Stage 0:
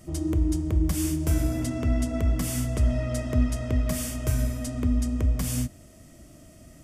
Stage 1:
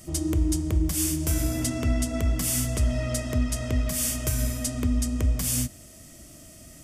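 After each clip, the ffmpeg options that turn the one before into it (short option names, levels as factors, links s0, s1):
-af "highshelf=f=2500:g=10,alimiter=limit=0.188:level=0:latency=1:release=202"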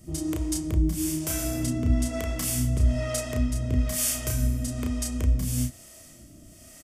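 -filter_complex "[0:a]acrossover=split=410[s0][s1];[s0]aeval=exprs='val(0)*(1-0.7/2+0.7/2*cos(2*PI*1.1*n/s))':c=same[s2];[s1]aeval=exprs='val(0)*(1-0.7/2-0.7/2*cos(2*PI*1.1*n/s))':c=same[s3];[s2][s3]amix=inputs=2:normalize=0,asplit=2[s4][s5];[s5]adelay=32,volume=0.668[s6];[s4][s6]amix=inputs=2:normalize=0"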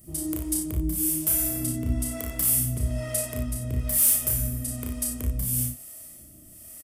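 -af "aexciter=amount=6.5:drive=3.8:freq=8900,asoftclip=type=hard:threshold=0.335,aecho=1:1:42|58:0.299|0.447,volume=0.562"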